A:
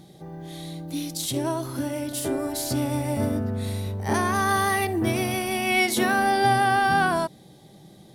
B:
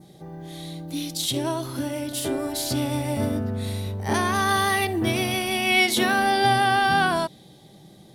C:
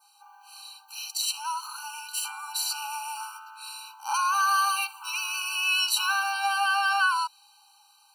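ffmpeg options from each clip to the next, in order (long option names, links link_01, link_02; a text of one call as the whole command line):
ffmpeg -i in.wav -af "adynamicequalizer=threshold=0.00562:dfrequency=3400:dqfactor=1.4:tfrequency=3400:tqfactor=1.4:attack=5:release=100:ratio=0.375:range=3.5:mode=boostabove:tftype=bell" out.wav
ffmpeg -i in.wav -af "acontrast=51,lowshelf=frequency=200:gain=-12,afftfilt=real='re*eq(mod(floor(b*sr/1024/780),2),1)':imag='im*eq(mod(floor(b*sr/1024/780),2),1)':win_size=1024:overlap=0.75,volume=-3dB" out.wav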